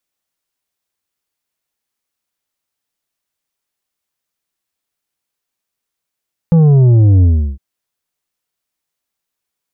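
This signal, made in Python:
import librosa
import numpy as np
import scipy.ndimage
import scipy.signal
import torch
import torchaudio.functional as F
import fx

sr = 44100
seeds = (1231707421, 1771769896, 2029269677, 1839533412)

y = fx.sub_drop(sr, level_db=-6, start_hz=170.0, length_s=1.06, drive_db=7.0, fade_s=0.35, end_hz=65.0)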